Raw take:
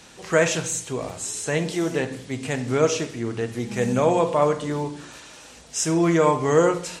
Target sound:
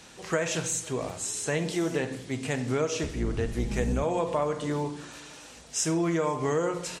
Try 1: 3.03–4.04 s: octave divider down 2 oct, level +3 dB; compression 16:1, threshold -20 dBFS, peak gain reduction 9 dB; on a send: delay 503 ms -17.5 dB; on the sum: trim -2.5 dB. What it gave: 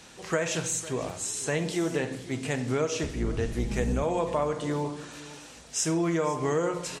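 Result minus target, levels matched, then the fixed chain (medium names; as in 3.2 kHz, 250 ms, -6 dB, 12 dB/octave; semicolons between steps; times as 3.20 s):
echo-to-direct +8.5 dB
3.03–4.04 s: octave divider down 2 oct, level +3 dB; compression 16:1, threshold -20 dBFS, peak gain reduction 9 dB; on a send: delay 503 ms -26 dB; on the sum: trim -2.5 dB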